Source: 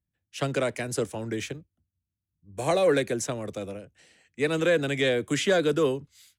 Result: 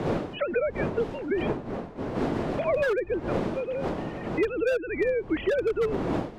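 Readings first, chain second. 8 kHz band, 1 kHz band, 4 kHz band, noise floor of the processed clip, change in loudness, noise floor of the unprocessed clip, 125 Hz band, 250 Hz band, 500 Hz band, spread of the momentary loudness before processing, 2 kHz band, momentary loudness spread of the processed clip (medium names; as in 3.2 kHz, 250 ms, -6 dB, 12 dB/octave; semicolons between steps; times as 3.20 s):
under -15 dB, +0.5 dB, -10.0 dB, -41 dBFS, -1.5 dB, under -85 dBFS, -0.5 dB, +1.0 dB, +0.5 dB, 15 LU, -2.0 dB, 6 LU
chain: formants replaced by sine waves; wind noise 440 Hz -37 dBFS; wavefolder -17 dBFS; three bands compressed up and down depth 100%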